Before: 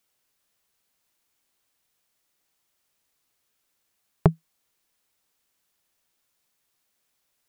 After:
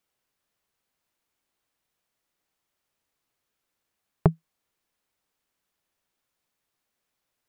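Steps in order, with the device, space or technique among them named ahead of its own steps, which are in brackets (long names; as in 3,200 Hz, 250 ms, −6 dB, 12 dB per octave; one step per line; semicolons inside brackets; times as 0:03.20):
behind a face mask (high-shelf EQ 3,100 Hz −7.5 dB)
level −1.5 dB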